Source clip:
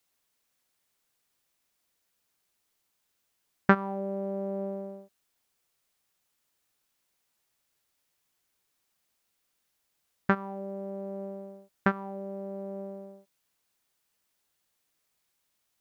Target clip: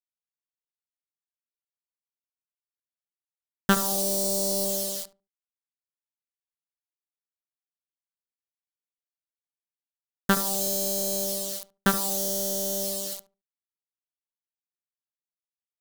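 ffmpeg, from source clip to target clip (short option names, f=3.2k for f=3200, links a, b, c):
-filter_complex "[0:a]agate=range=-33dB:threshold=-45dB:ratio=3:detection=peak,dynaudnorm=f=560:g=5:m=4.5dB,acrusher=bits=7:mix=0:aa=0.000001,aexciter=amount=8:drive=4.5:freq=3.4k,aeval=exprs='0.75*(cos(1*acos(clip(val(0)/0.75,-1,1)))-cos(1*PI/2))+0.133*(cos(4*acos(clip(val(0)/0.75,-1,1)))-cos(4*PI/2))':c=same,asoftclip=type=tanh:threshold=-10dB,asplit=2[a][b];[b]adelay=73,lowpass=f=860:p=1,volume=-10.5dB,asplit=2[c][d];[d]adelay=73,lowpass=f=860:p=1,volume=0.21,asplit=2[e][f];[f]adelay=73,lowpass=f=860:p=1,volume=0.21[g];[a][c][e][g]amix=inputs=4:normalize=0,adynamicequalizer=threshold=0.01:dfrequency=2000:dqfactor=0.7:tfrequency=2000:tqfactor=0.7:attack=5:release=100:ratio=0.375:range=3:mode=boostabove:tftype=highshelf"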